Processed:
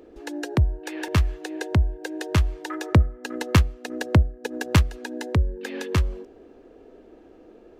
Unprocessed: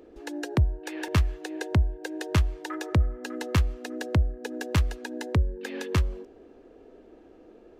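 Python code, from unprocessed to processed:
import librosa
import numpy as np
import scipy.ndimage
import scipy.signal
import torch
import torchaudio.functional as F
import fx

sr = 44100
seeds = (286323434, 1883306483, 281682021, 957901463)

y = fx.transient(x, sr, attack_db=5, sustain_db=-6, at=(2.91, 4.93), fade=0.02)
y = y * librosa.db_to_amplitude(2.5)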